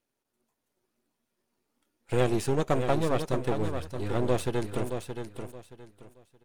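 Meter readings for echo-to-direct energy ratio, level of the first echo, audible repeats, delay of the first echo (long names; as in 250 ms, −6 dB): −7.0 dB, −7.5 dB, 3, 623 ms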